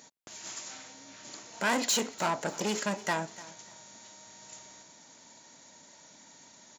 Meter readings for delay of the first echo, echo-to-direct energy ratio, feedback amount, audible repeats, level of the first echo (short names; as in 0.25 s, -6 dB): 0.296 s, -18.5 dB, 26%, 2, -19.0 dB